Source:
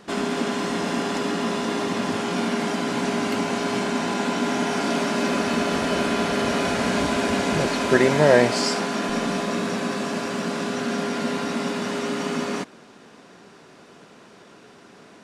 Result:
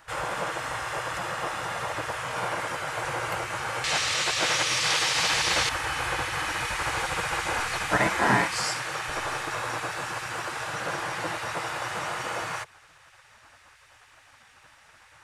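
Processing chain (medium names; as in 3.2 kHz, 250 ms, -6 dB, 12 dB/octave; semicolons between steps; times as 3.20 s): peaking EQ 4.4 kHz -13.5 dB 2.2 oct, from 3.84 s +3.5 dB, from 5.69 s -10.5 dB; spectral gate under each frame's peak -15 dB weak; trim +5.5 dB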